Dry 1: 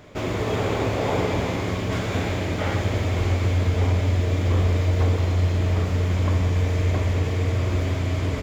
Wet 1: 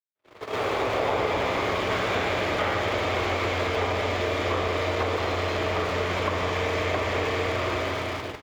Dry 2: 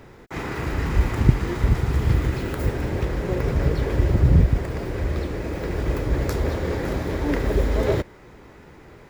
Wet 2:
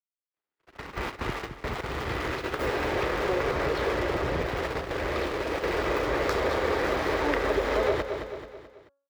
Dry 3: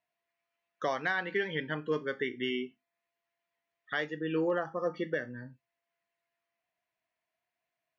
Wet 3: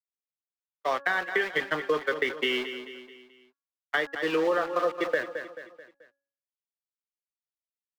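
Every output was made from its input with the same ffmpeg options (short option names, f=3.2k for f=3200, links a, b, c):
-filter_complex "[0:a]dynaudnorm=f=250:g=7:m=13dB,aeval=exprs='val(0)*gte(abs(val(0)),0.0447)':c=same,tremolo=f=130:d=0.182,adynamicequalizer=threshold=0.00708:dfrequency=1200:dqfactor=8:tfrequency=1200:tqfactor=8:attack=5:release=100:ratio=0.375:range=2.5:mode=boostabove:tftype=bell,agate=range=-60dB:threshold=-22dB:ratio=16:detection=peak,acrossover=split=330 4900:gain=0.178 1 0.224[a][b][c];[a][b][c]amix=inputs=3:normalize=0,bandreject=f=278.8:t=h:w=4,bandreject=f=557.6:t=h:w=4,bandreject=f=836.4:t=h:w=4,bandreject=f=1.1152k:t=h:w=4,bandreject=f=1.394k:t=h:w=4,bandreject=f=1.6728k:t=h:w=4,asplit=2[d][e];[e]aecho=0:1:217|434|651|868:0.211|0.0951|0.0428|0.0193[f];[d][f]amix=inputs=2:normalize=0,acrossover=split=110|370[g][h][i];[g]acompressor=threshold=-36dB:ratio=4[j];[h]acompressor=threshold=-37dB:ratio=4[k];[i]acompressor=threshold=-24dB:ratio=4[l];[j][k][l]amix=inputs=3:normalize=0"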